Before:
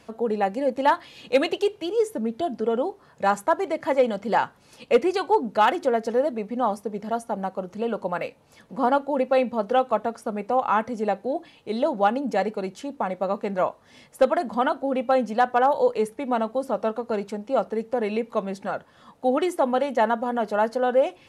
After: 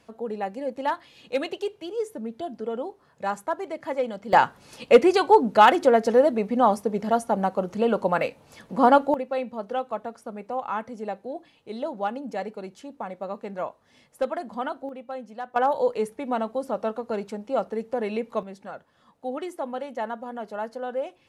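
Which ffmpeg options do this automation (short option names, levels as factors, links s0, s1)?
-af "asetnsamples=n=441:p=0,asendcmd='4.33 volume volume 4.5dB;9.14 volume volume -7.5dB;14.89 volume volume -14.5dB;15.56 volume volume -2.5dB;18.43 volume volume -9.5dB',volume=0.473"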